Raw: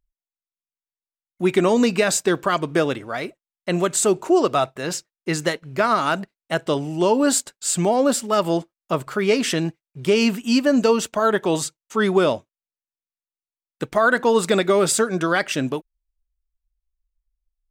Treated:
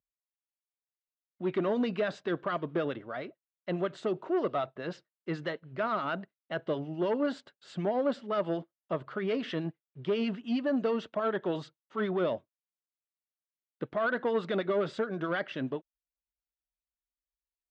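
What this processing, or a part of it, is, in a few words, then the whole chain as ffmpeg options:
guitar amplifier with harmonic tremolo: -filter_complex "[0:a]acrossover=split=1200[link_01][link_02];[link_01]aeval=exprs='val(0)*(1-0.5/2+0.5/2*cos(2*PI*9.4*n/s))':channel_layout=same[link_03];[link_02]aeval=exprs='val(0)*(1-0.5/2-0.5/2*cos(2*PI*9.4*n/s))':channel_layout=same[link_04];[link_03][link_04]amix=inputs=2:normalize=0,asoftclip=type=tanh:threshold=-15dB,highpass=97,equalizer=frequency=600:width_type=q:width=4:gain=3,equalizer=frequency=870:width_type=q:width=4:gain=-3,equalizer=frequency=2400:width_type=q:width=4:gain=-7,lowpass=frequency=3400:width=0.5412,lowpass=frequency=3400:width=1.3066,volume=-7.5dB"

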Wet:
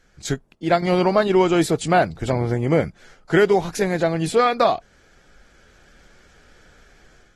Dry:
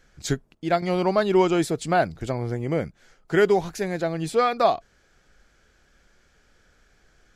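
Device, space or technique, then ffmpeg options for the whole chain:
low-bitrate web radio: -af "dynaudnorm=framelen=420:gausssize=3:maxgain=8dB,alimiter=limit=-6dB:level=0:latency=1:release=356" -ar 48000 -c:a aac -b:a 32k

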